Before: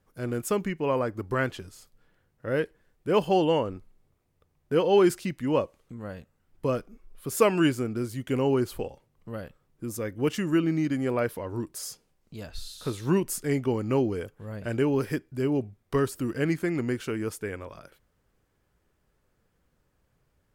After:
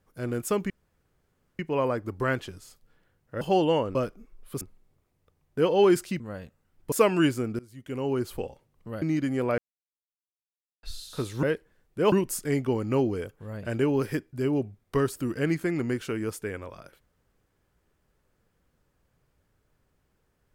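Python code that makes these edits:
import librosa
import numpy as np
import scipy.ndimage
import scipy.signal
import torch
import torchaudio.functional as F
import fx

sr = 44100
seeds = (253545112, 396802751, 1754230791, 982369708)

y = fx.edit(x, sr, fx.insert_room_tone(at_s=0.7, length_s=0.89),
    fx.move(start_s=2.52, length_s=0.69, to_s=13.11),
    fx.cut(start_s=5.34, length_s=0.61),
    fx.move(start_s=6.67, length_s=0.66, to_s=3.75),
    fx.fade_in_from(start_s=8.0, length_s=0.85, floor_db=-23.5),
    fx.cut(start_s=9.43, length_s=1.27),
    fx.silence(start_s=11.26, length_s=1.25), tone=tone)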